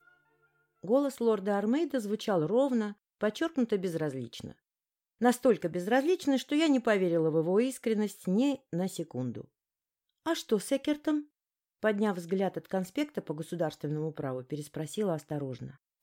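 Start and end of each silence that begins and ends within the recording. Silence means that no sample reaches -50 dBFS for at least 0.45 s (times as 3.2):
4.52–5.21
9.45–10.26
11.24–11.83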